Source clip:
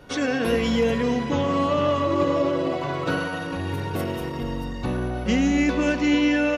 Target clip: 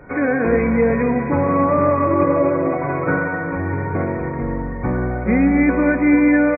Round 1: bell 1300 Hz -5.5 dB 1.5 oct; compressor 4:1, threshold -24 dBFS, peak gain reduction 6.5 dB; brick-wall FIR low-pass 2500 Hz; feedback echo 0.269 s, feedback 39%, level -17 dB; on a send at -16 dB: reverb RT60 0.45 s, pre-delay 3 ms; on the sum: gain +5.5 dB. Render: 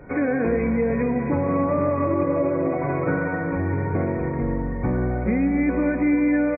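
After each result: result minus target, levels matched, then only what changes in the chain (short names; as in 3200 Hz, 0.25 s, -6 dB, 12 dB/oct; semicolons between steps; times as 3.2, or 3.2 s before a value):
compressor: peak gain reduction +6.5 dB; 1000 Hz band -2.5 dB
remove: compressor 4:1, threshold -24 dBFS, peak gain reduction 6.5 dB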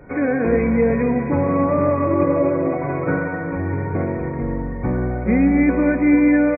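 1000 Hz band -3.5 dB
remove: bell 1300 Hz -5.5 dB 1.5 oct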